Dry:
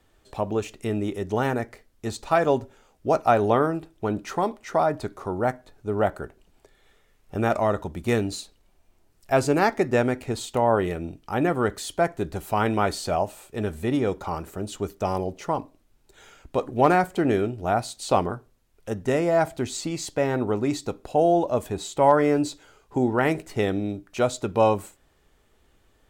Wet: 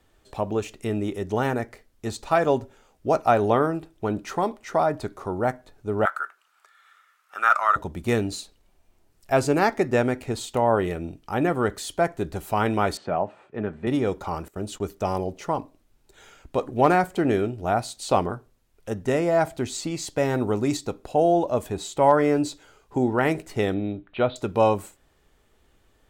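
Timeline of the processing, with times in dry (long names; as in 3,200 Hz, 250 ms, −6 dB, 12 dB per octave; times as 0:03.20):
0:06.05–0:07.76: high-pass with resonance 1,300 Hz, resonance Q 7.1
0:12.97–0:13.87: Chebyshev band-pass filter 140–1,800 Hz
0:14.48–0:14.93: noise gate −45 dBFS, range −17 dB
0:20.17–0:20.77: bass and treble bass +2 dB, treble +7 dB
0:23.74–0:24.36: Butterworth low-pass 3,900 Hz 72 dB per octave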